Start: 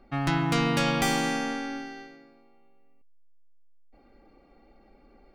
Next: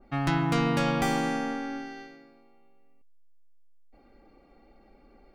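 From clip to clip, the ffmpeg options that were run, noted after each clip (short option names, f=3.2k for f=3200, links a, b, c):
-af "adynamicequalizer=threshold=0.00708:dfrequency=1900:dqfactor=0.7:tfrequency=1900:tqfactor=0.7:attack=5:release=100:ratio=0.375:range=4:mode=cutabove:tftype=highshelf"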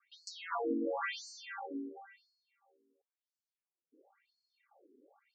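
-af "afftfilt=real='re*between(b*sr/1024,320*pow(6000/320,0.5+0.5*sin(2*PI*0.96*pts/sr))/1.41,320*pow(6000/320,0.5+0.5*sin(2*PI*0.96*pts/sr))*1.41)':imag='im*between(b*sr/1024,320*pow(6000/320,0.5+0.5*sin(2*PI*0.96*pts/sr))/1.41,320*pow(6000/320,0.5+0.5*sin(2*PI*0.96*pts/sr))*1.41)':win_size=1024:overlap=0.75,volume=-1.5dB"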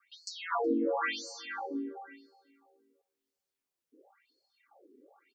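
-filter_complex "[0:a]asplit=2[a][b];[b]adelay=371,lowpass=f=1.2k:p=1,volume=-20dB,asplit=2[c][d];[d]adelay=371,lowpass=f=1.2k:p=1,volume=0.28[e];[a][c][e]amix=inputs=3:normalize=0,volume=5dB"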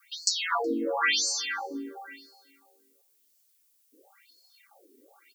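-af "crystalizer=i=10:c=0,volume=-1dB"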